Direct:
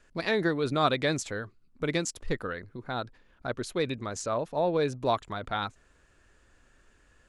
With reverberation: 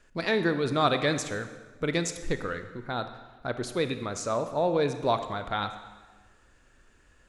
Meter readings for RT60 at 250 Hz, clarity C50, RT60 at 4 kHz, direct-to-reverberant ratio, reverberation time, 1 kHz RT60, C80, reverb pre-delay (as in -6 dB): 1.4 s, 10.0 dB, 1.1 s, 8.5 dB, 1.4 s, 1.3 s, 11.5 dB, 24 ms